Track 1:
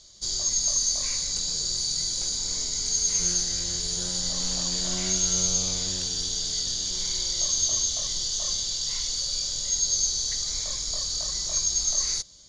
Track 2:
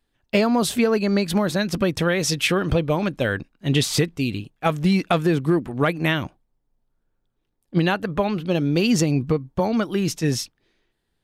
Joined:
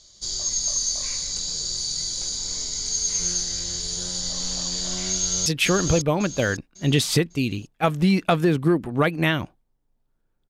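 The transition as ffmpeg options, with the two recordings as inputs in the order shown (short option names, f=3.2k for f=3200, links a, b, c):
-filter_complex "[0:a]apad=whole_dur=10.49,atrim=end=10.49,atrim=end=5.462[a];[1:a]atrim=start=2.278:end=7.31[b];[a][b]acrossfade=d=0.004:c1=hsin:c2=hsin,asplit=2[c][d];[d]afade=t=in:st=5.1:d=0.01,afade=t=out:st=5.46:d=0.01,aecho=0:1:550|1100|1650|2200:0.595662|0.208482|0.0729686|0.025539[e];[c][e]amix=inputs=2:normalize=0"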